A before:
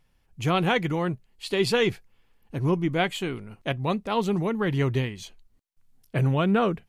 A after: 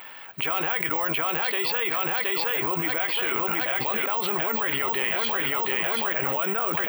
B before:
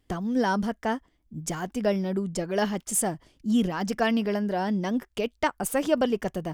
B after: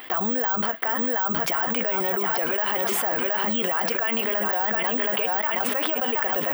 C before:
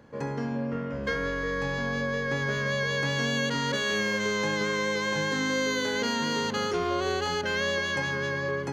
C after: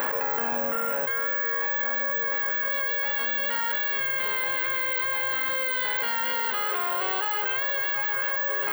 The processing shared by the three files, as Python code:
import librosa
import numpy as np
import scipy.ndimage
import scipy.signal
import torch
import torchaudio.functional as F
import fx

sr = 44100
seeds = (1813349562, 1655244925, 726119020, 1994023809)

p1 = x + fx.echo_feedback(x, sr, ms=721, feedback_pct=55, wet_db=-10, dry=0)
p2 = fx.vibrato(p1, sr, rate_hz=2.4, depth_cents=8.6)
p3 = scipy.signal.sosfilt(scipy.signal.butter(2, 990.0, 'highpass', fs=sr, output='sos'), p2)
p4 = fx.doubler(p3, sr, ms=13.0, db=-12)
p5 = fx.rider(p4, sr, range_db=5, speed_s=0.5)
p6 = p4 + (p5 * librosa.db_to_amplitude(2.0))
p7 = fx.air_absorb(p6, sr, metres=370.0)
p8 = (np.kron(p7[::2], np.eye(2)[0]) * 2)[:len(p7)]
p9 = fx.env_flatten(p8, sr, amount_pct=100)
y = p9 * librosa.db_to_amplitude(-7.5)